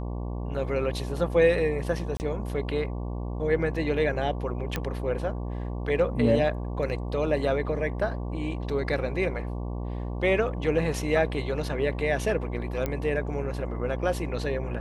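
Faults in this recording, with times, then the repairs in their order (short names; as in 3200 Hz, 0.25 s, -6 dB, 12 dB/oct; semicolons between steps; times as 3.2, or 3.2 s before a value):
buzz 60 Hz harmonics 19 -32 dBFS
2.17–2.2 gap 29 ms
4.76 pop -13 dBFS
12.86 pop -15 dBFS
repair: de-click; de-hum 60 Hz, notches 19; interpolate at 2.17, 29 ms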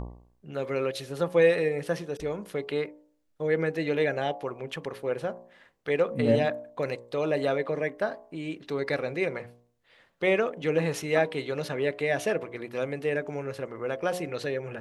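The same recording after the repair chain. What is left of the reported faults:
none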